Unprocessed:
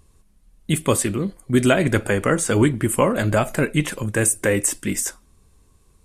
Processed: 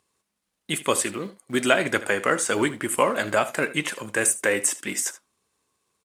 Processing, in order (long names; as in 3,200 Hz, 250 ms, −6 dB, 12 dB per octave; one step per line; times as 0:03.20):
mu-law and A-law mismatch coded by A
meter weighting curve A
on a send: single-tap delay 77 ms −16.5 dB